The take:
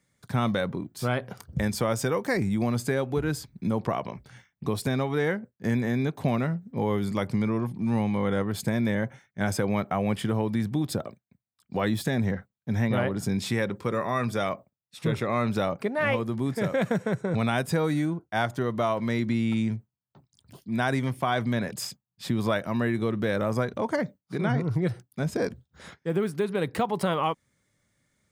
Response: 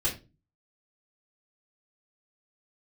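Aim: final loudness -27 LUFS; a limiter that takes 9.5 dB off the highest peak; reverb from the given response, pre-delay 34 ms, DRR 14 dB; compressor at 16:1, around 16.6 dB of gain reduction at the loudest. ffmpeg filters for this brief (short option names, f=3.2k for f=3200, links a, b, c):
-filter_complex "[0:a]acompressor=threshold=-38dB:ratio=16,alimiter=level_in=10dB:limit=-24dB:level=0:latency=1,volume=-10dB,asplit=2[a][b];[1:a]atrim=start_sample=2205,adelay=34[c];[b][c]afir=irnorm=-1:irlink=0,volume=-21dB[d];[a][d]amix=inputs=2:normalize=0,volume=17.5dB"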